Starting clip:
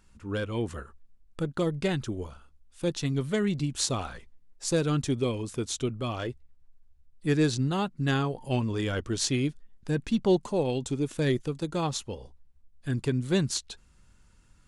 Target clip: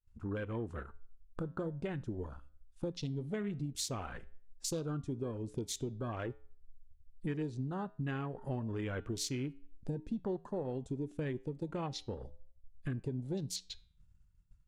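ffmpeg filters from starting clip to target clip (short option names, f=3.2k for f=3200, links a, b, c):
-af "acompressor=threshold=-40dB:ratio=5,afwtdn=0.00282,agate=range=-33dB:threshold=-50dB:ratio=3:detection=peak,flanger=delay=8:depth=1:regen=-89:speed=1.1:shape=triangular,volume=8dB"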